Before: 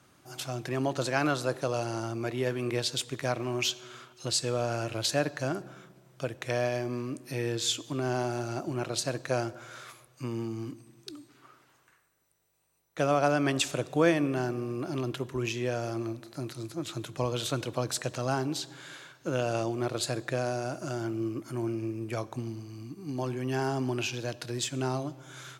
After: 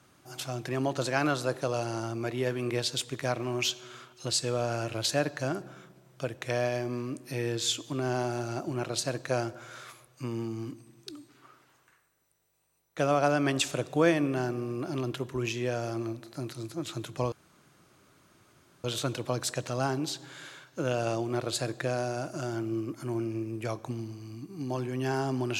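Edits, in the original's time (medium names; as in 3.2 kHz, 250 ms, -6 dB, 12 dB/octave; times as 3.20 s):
17.32 s: insert room tone 1.52 s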